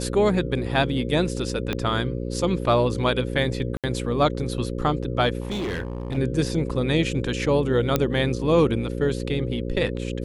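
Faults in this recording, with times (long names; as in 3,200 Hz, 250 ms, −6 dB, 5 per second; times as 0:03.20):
mains buzz 60 Hz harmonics 9 −29 dBFS
0:01.73: click −12 dBFS
0:03.77–0:03.84: drop-out 67 ms
0:05.40–0:06.18: clipping −24.5 dBFS
0:07.96: click −6 dBFS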